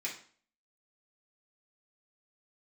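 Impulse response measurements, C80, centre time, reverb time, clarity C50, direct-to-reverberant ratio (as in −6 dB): 12.5 dB, 24 ms, 0.45 s, 7.5 dB, −5.5 dB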